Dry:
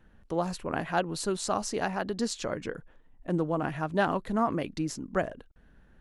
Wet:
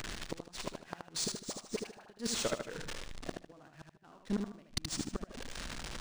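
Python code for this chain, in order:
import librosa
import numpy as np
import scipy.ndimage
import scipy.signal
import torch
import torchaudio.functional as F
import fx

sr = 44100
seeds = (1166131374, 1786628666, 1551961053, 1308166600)

p1 = x + 0.5 * 10.0 ** (-39.5 / 20.0) * np.sign(x)
p2 = fx.low_shelf(p1, sr, hz=180.0, db=11.5, at=(4.66, 5.21))
p3 = fx.level_steps(p2, sr, step_db=15)
p4 = fx.gate_flip(p3, sr, shuts_db=-23.0, range_db=-28)
p5 = fx.dispersion(p4, sr, late='highs', ms=42.0, hz=980.0, at=(1.24, 2.06))
p6 = fx.gate_flip(p5, sr, shuts_db=-41.0, range_db=-29, at=(3.33, 4.03), fade=0.02)
p7 = F.preemphasis(torch.from_numpy(p6), 0.8).numpy()
p8 = p7 + fx.echo_feedback(p7, sr, ms=76, feedback_pct=33, wet_db=-5, dry=0)
p9 = np.interp(np.arange(len(p8)), np.arange(len(p8))[::3], p8[::3])
y = p9 * librosa.db_to_amplitude(14.0)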